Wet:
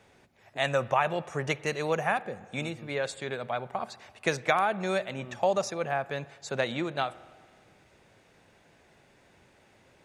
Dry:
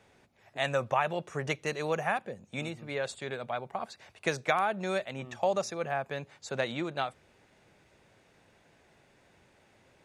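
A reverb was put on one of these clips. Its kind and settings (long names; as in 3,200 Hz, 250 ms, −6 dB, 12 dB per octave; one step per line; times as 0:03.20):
spring reverb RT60 1.7 s, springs 48/56 ms, chirp 70 ms, DRR 18.5 dB
level +2.5 dB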